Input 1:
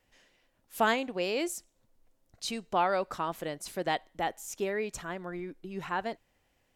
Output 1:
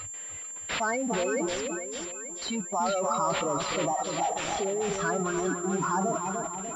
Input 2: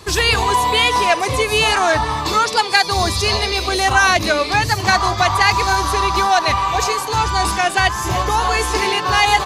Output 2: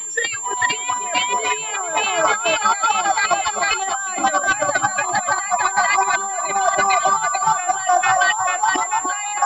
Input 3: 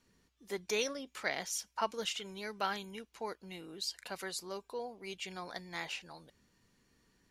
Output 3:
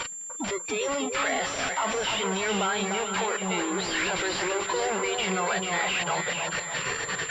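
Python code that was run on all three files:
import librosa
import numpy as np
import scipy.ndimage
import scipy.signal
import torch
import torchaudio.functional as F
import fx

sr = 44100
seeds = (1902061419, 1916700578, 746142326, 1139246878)

p1 = x + 0.5 * 10.0 ** (-22.5 / 20.0) * np.sign(x)
p2 = scipy.signal.sosfilt(scipy.signal.butter(2, 180.0, 'highpass', fs=sr, output='sos'), p1)
p3 = fx.level_steps(p2, sr, step_db=15)
p4 = fx.peak_eq(p3, sr, hz=290.0, db=-4.5, octaves=1.9)
p5 = fx.noise_reduce_blind(p4, sr, reduce_db=24)
p6 = p5 + fx.echo_split(p5, sr, split_hz=1200.0, low_ms=296, high_ms=441, feedback_pct=52, wet_db=-5, dry=0)
p7 = fx.over_compress(p6, sr, threshold_db=-23.0, ratio=-0.5)
p8 = fx.pwm(p7, sr, carrier_hz=7300.0)
y = F.gain(torch.from_numpy(p8), 5.0).numpy()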